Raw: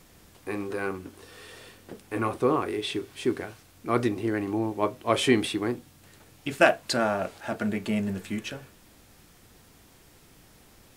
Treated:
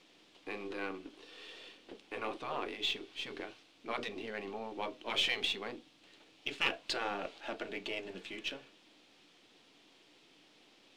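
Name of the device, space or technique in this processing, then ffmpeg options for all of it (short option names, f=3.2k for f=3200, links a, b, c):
crystal radio: -af "equalizer=f=300:w=4.6:g=6,afftfilt=real='re*lt(hypot(re,im),0.282)':imag='im*lt(hypot(re,im),0.282)':win_size=1024:overlap=0.75,highpass=310,lowpass=2.6k,highshelf=f=2.3k:t=q:w=1.5:g=10.5,aeval=exprs='if(lt(val(0),0),0.708*val(0),val(0))':c=same,volume=-5dB"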